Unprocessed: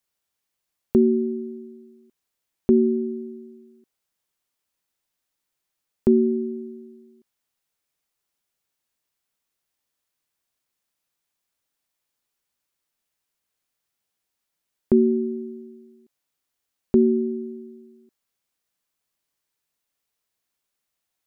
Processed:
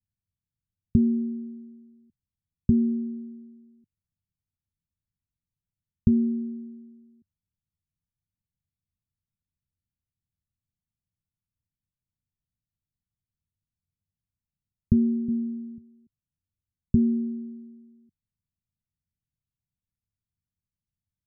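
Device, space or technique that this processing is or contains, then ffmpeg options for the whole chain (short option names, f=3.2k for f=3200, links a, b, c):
the neighbour's flat through the wall: -filter_complex "[0:a]asettb=1/sr,asplit=3[a][b][c];[a]atrim=end=15.284[d];[b]atrim=start=15.28:end=15.78,asetpts=PTS-STARTPTS,afade=t=in:d=0.004:c=qsin,afade=t=out:st=0.496:d=0.004:c=qsin,lowshelf=f=150:t=q:w=3:g=-13.5[e];[c]atrim=start=15.776[f];[d][e]acrossfade=d=0.004:c1=hsin:c2=qsin[g];[g][f]acrossfade=d=0.004:c1=qsin:c2=hsin,lowpass=f=180:w=0.5412,lowpass=f=180:w=1.3066,equalizer=f=91:t=o:w=0.54:g=8,volume=7.5dB"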